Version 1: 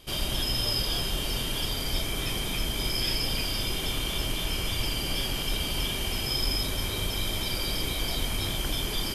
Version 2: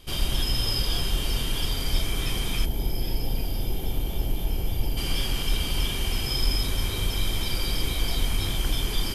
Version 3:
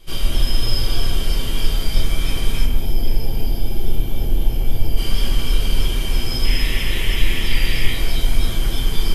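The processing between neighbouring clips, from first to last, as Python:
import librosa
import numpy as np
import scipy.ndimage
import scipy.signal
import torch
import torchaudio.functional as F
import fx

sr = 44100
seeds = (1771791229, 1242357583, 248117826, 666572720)

y1 = fx.spec_box(x, sr, start_s=2.65, length_s=2.32, low_hz=930.0, high_hz=11000.0, gain_db=-11)
y1 = fx.low_shelf(y1, sr, hz=80.0, db=8.5)
y1 = fx.notch(y1, sr, hz=610.0, q=12.0)
y2 = fx.spec_paint(y1, sr, seeds[0], shape='noise', start_s=6.44, length_s=1.49, low_hz=1700.0, high_hz=3500.0, level_db=-31.0)
y2 = fx.echo_alternate(y2, sr, ms=139, hz=2200.0, feedback_pct=55, wet_db=-6.5)
y2 = fx.room_shoebox(y2, sr, seeds[1], volume_m3=33.0, walls='mixed', distance_m=0.67)
y2 = y2 * 10.0 ** (-2.0 / 20.0)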